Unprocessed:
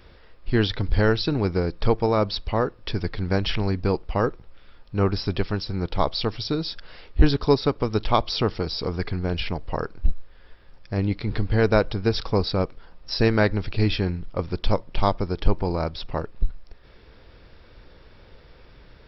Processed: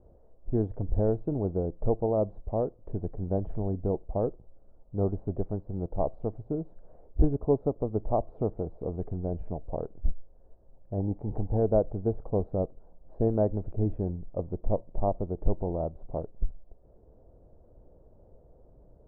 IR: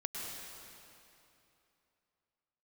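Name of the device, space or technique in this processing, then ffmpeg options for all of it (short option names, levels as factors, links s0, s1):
under water: -filter_complex "[0:a]lowpass=f=710:w=0.5412,lowpass=f=710:w=1.3066,equalizer=f=660:t=o:w=0.53:g=6.5,asettb=1/sr,asplit=3[s0][s1][s2];[s0]atrim=end=11.004[s3];[s1]atrim=start=11:end=11.57,asetpts=PTS-STARTPTS,afade=t=in:d=0.004:c=qsin,afade=t=out:st=0.566:d=0.004:c=qsin,equalizer=f=840:t=o:w=0.41:g=11.5[s4];[s2]atrim=start=11.566[s5];[s3][s4]acrossfade=d=0.004:c1=hsin:c2=qsin[s6];[s6][s5]acrossfade=d=0.004:c1=qsin:c2=hsin,volume=0.473"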